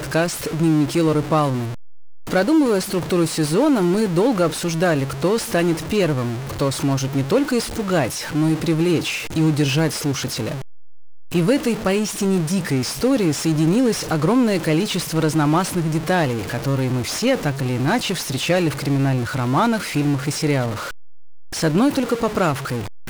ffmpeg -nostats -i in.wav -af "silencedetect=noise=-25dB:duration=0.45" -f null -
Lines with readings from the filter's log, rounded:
silence_start: 1.71
silence_end: 2.31 | silence_duration: 0.60
silence_start: 10.56
silence_end: 11.34 | silence_duration: 0.79
silence_start: 20.81
silence_end: 21.54 | silence_duration: 0.73